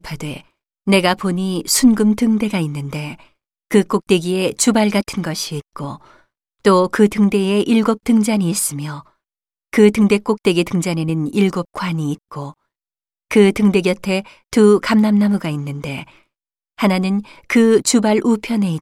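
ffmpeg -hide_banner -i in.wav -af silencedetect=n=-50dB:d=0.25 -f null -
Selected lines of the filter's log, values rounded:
silence_start: 0.51
silence_end: 0.87 | silence_duration: 0.36
silence_start: 3.31
silence_end: 3.71 | silence_duration: 0.40
silence_start: 6.24
silence_end: 6.59 | silence_duration: 0.35
silence_start: 9.11
silence_end: 9.73 | silence_duration: 0.62
silence_start: 12.54
silence_end: 13.31 | silence_duration: 0.77
silence_start: 16.23
silence_end: 16.78 | silence_duration: 0.55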